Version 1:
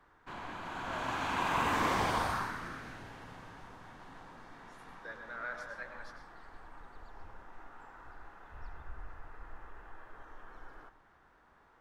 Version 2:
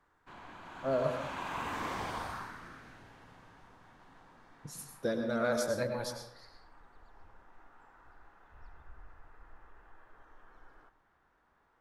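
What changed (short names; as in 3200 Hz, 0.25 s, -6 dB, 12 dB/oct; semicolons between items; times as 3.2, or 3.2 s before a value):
speech: remove band-pass 1700 Hz, Q 3; background -7.0 dB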